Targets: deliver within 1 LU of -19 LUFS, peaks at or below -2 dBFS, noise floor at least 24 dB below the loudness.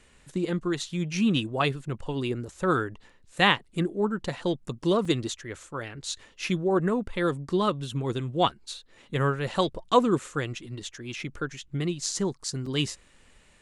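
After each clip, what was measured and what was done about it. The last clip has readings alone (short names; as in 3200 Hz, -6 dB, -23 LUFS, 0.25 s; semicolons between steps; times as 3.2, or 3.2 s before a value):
dropouts 2; longest dropout 4.0 ms; loudness -28.0 LUFS; peak -6.0 dBFS; loudness target -19.0 LUFS
-> interpolate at 5.05/12.66, 4 ms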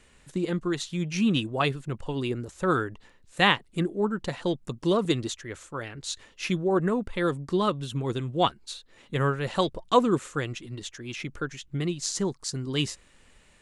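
dropouts 0; loudness -28.0 LUFS; peak -6.0 dBFS; loudness target -19.0 LUFS
-> gain +9 dB; limiter -2 dBFS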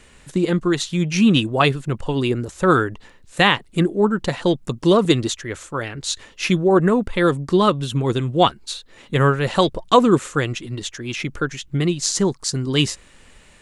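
loudness -19.5 LUFS; peak -2.0 dBFS; noise floor -49 dBFS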